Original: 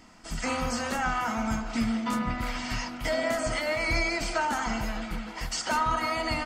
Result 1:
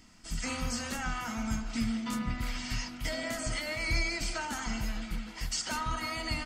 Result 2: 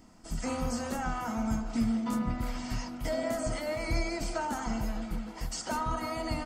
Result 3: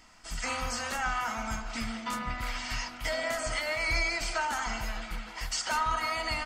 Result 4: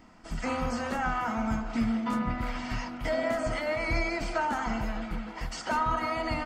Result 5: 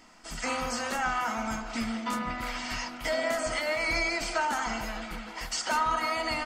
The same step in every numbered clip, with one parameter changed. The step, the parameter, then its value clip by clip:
bell, frequency: 730, 2300, 240, 12000, 84 Hz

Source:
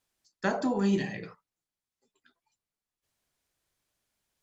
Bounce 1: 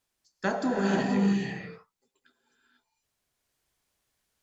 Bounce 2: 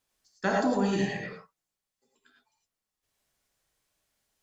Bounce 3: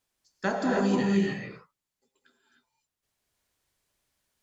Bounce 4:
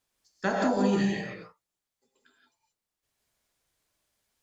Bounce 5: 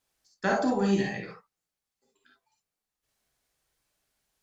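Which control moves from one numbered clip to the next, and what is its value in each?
non-linear reverb, gate: 520, 130, 330, 200, 80 ms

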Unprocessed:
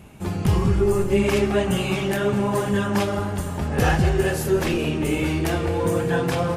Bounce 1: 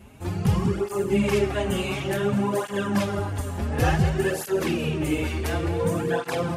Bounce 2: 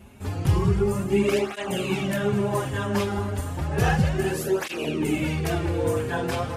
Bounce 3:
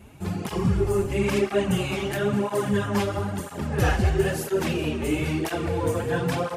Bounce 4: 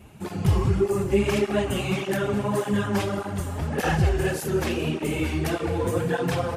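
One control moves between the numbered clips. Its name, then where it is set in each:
tape flanging out of phase, nulls at: 0.56, 0.32, 1, 1.7 Hz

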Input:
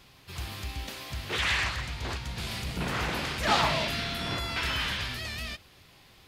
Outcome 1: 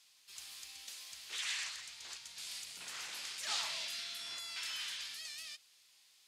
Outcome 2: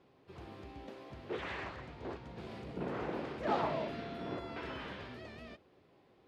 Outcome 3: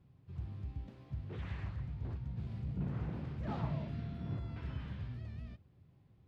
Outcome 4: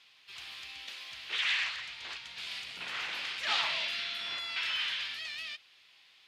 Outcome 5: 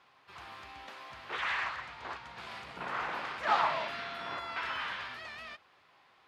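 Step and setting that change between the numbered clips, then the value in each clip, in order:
band-pass, frequency: 7600, 400, 120, 3000, 1100 Hz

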